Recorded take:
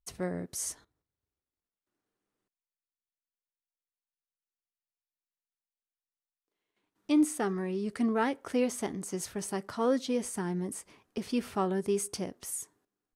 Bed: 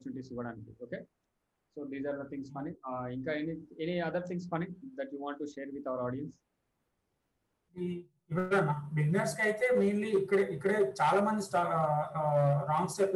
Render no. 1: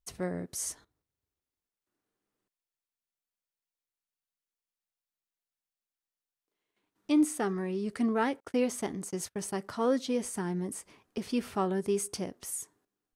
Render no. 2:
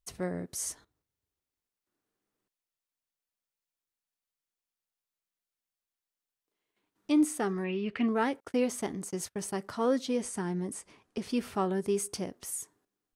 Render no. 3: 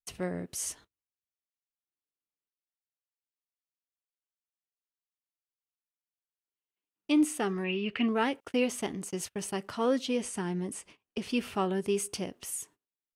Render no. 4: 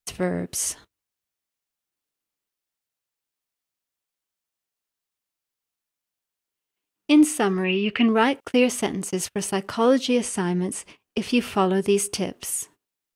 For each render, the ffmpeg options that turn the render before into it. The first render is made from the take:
-filter_complex "[0:a]asettb=1/sr,asplit=3[s0][s1][s2];[s0]atrim=end=8.404[s3];[s1]atrim=start=8.4:end=9.58,asetpts=PTS-STARTPTS,afade=t=in:d=0.004:c=qsin,afade=t=out:st=1.176:d=0.004:c=qsin,agate=range=0.0178:threshold=0.00708:ratio=16:release=100:detection=peak[s4];[s2]atrim=start=9.576[s5];[s3][s4]acrossfade=d=0.004:c1=hsin:c2=qsin[s6];[s6][s5]acrossfade=d=0.004:c1=qsin:c2=hsin"
-filter_complex "[0:a]asettb=1/sr,asplit=3[s0][s1][s2];[s0]atrim=end=7.644[s3];[s1]atrim=start=7.64:end=8.08,asetpts=PTS-STARTPTS,afade=t=in:d=0.004:c=qsin,afade=t=out:st=0.436:d=0.004:c=qsin,lowpass=f=2700:t=q:w=4.4[s4];[s2]atrim=start=8.076[s5];[s3][s4]acrossfade=d=0.004:c1=hsin:c2=qsin[s6];[s6][s5]acrossfade=d=0.004:c1=qsin:c2=hsin,asettb=1/sr,asplit=3[s7][s8][s9];[s7]atrim=end=10.164[s10];[s8]atrim=start=10.16:end=11.26,asetpts=PTS-STARTPTS,afade=t=in:d=0.004:c=qsin,afade=t=out:st=1.096:d=0.004:c=qsin,lowpass=f=11000:w=0.5412,lowpass=f=11000:w=1.3066[s11];[s9]atrim=start=11.256[s12];[s10][s11]acrossfade=d=0.004:c1=hsin:c2=qsin[s13];[s13][s12]acrossfade=d=0.004:c1=qsin:c2=hsin"
-af "agate=range=0.0891:threshold=0.002:ratio=16:detection=peak,equalizer=f=2800:t=o:w=0.49:g=9.5"
-af "volume=2.82"

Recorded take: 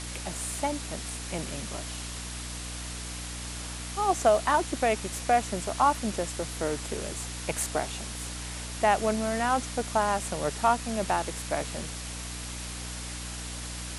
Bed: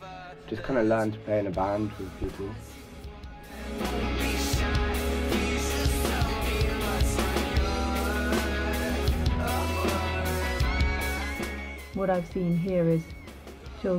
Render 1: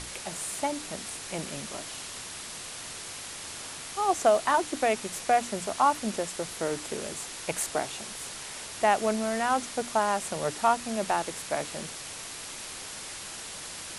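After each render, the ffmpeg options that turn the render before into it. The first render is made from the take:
-af "bandreject=f=60:t=h:w=6,bandreject=f=120:t=h:w=6,bandreject=f=180:t=h:w=6,bandreject=f=240:t=h:w=6,bandreject=f=300:t=h:w=6"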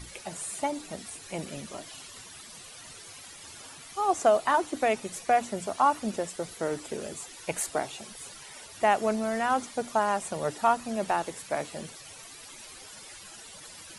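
-af "afftdn=nr=13:nf=-41"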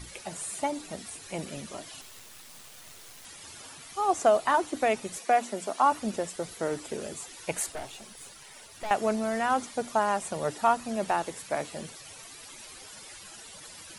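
-filter_complex "[0:a]asettb=1/sr,asplit=3[s0][s1][s2];[s0]atrim=end=2.014[s3];[s1]atrim=start=2.01:end=3.25,asetpts=PTS-STARTPTS,afade=t=in:d=0.004:c=qsin,afade=t=out:st=1.236:d=0.004:c=qsin,acrusher=bits=5:dc=4:mix=0:aa=0.000001[s4];[s2]atrim=start=3.246[s5];[s3][s4]acrossfade=d=0.004:c1=hsin:c2=qsin[s6];[s6][s5]acrossfade=d=0.004:c1=qsin:c2=hsin,asettb=1/sr,asplit=3[s7][s8][s9];[s7]atrim=end=5.184[s10];[s8]atrim=start=5.18:end=5.92,asetpts=PTS-STARTPTS,afade=t=in:d=0.004:c=qsin,afade=t=out:st=0.736:d=0.004:c=qsin,highpass=f=210:w=0.5412,highpass=f=210:w=1.3066[s11];[s9]atrim=start=5.916[s12];[s10][s11]acrossfade=d=0.004:c1=hsin:c2=qsin[s13];[s13][s12]acrossfade=d=0.004:c1=qsin:c2=hsin,asettb=1/sr,asplit=3[s14][s15][s16];[s14]atrim=end=7.724[s17];[s15]atrim=start=7.72:end=8.91,asetpts=PTS-STARTPTS,afade=t=in:d=0.004:c=qsin,afade=t=out:st=1.186:d=0.004:c=qsin,aeval=exprs='(tanh(44.7*val(0)+0.65)-tanh(0.65))/44.7':c=same[s18];[s16]atrim=start=8.906[s19];[s17][s18]acrossfade=d=0.004:c1=hsin:c2=qsin[s20];[s20][s19]acrossfade=d=0.004:c1=qsin:c2=hsin"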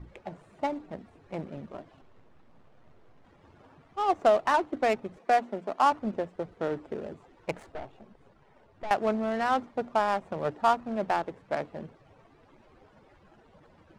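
-af "adynamicsmooth=sensitivity=3:basefreq=750"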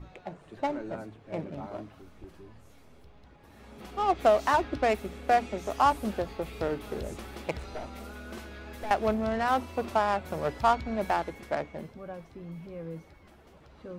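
-filter_complex "[1:a]volume=0.168[s0];[0:a][s0]amix=inputs=2:normalize=0"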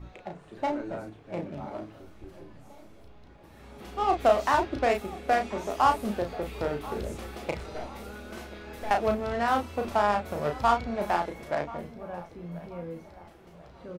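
-filter_complex "[0:a]asplit=2[s0][s1];[s1]adelay=34,volume=0.562[s2];[s0][s2]amix=inputs=2:normalize=0,asplit=2[s3][s4];[s4]adelay=1034,lowpass=f=1500:p=1,volume=0.141,asplit=2[s5][s6];[s6]adelay=1034,lowpass=f=1500:p=1,volume=0.43,asplit=2[s7][s8];[s8]adelay=1034,lowpass=f=1500:p=1,volume=0.43,asplit=2[s9][s10];[s10]adelay=1034,lowpass=f=1500:p=1,volume=0.43[s11];[s3][s5][s7][s9][s11]amix=inputs=5:normalize=0"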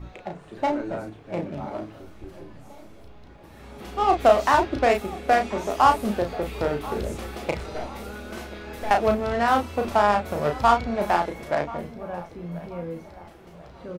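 -af "volume=1.78"

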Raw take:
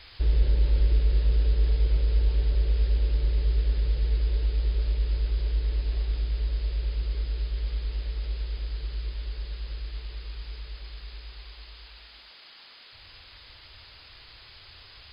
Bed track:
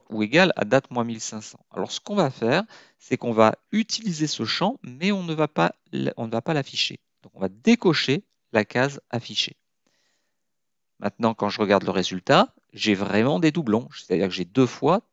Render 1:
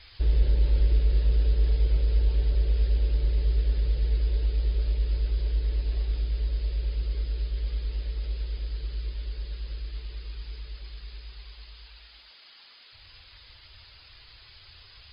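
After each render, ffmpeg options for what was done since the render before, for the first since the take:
-af "afftdn=nr=6:nf=-51"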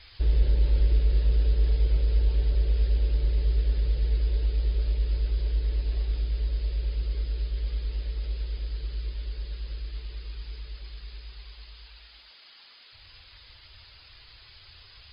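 -af anull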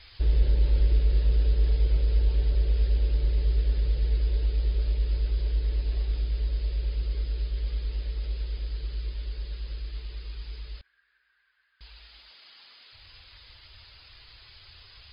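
-filter_complex "[0:a]asettb=1/sr,asplit=3[s0][s1][s2];[s0]atrim=end=10.814[s3];[s1]atrim=start=10.81:end=11.81,asetpts=PTS-STARTPTS,afade=t=in:d=0.004:c=qsin,afade=t=out:st=0.996:d=0.004:c=qsin,bandpass=f=1600:t=q:w=12[s4];[s2]atrim=start=11.806[s5];[s3][s4]acrossfade=d=0.004:c1=hsin:c2=qsin[s6];[s6][s5]acrossfade=d=0.004:c1=qsin:c2=hsin"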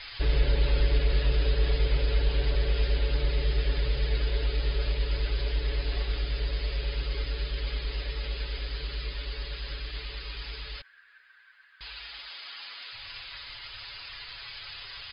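-af "equalizer=f=1800:w=0.31:g=11.5,aecho=1:1:7.1:0.54"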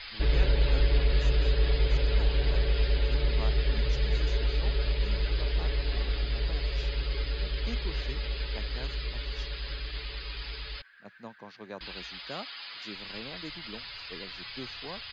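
-filter_complex "[1:a]volume=0.0668[s0];[0:a][s0]amix=inputs=2:normalize=0"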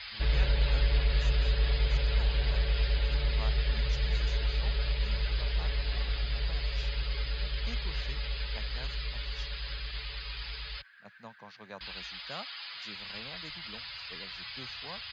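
-af "highpass=44,equalizer=f=330:t=o:w=1.2:g=-11"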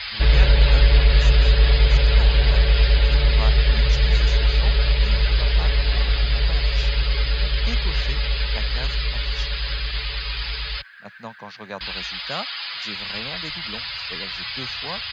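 -af "volume=3.98"

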